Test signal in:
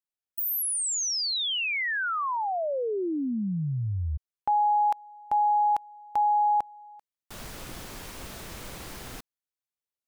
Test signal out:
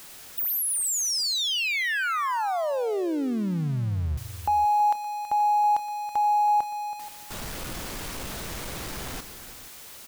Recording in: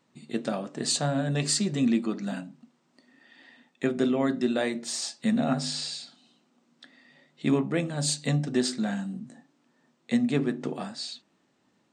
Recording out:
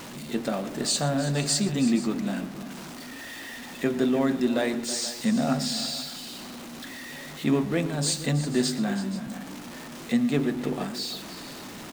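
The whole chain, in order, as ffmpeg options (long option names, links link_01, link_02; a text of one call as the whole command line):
ffmpeg -i in.wav -af "aeval=exprs='val(0)+0.5*0.0178*sgn(val(0))':channel_layout=same,aecho=1:1:119|326|478:0.133|0.211|0.15" out.wav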